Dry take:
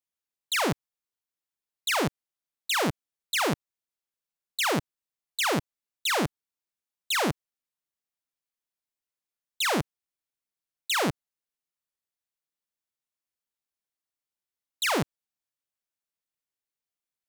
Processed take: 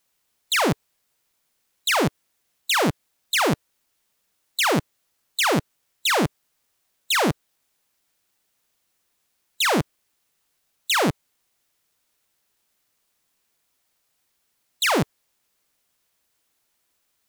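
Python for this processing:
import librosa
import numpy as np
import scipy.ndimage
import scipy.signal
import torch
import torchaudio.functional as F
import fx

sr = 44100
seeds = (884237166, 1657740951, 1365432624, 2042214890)

y = fx.hpss(x, sr, part='percussive', gain_db=6)
y = fx.quant_dither(y, sr, seeds[0], bits=12, dither='triangular')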